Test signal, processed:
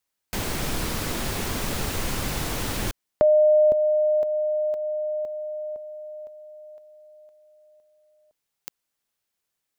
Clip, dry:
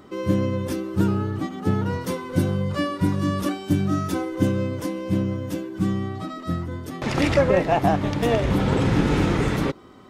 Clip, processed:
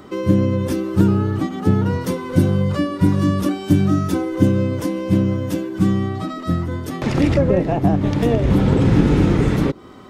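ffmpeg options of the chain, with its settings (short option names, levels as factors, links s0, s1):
-filter_complex "[0:a]acrossover=split=460[s0][s1];[s1]acompressor=threshold=0.0178:ratio=4[s2];[s0][s2]amix=inputs=2:normalize=0,volume=2.11"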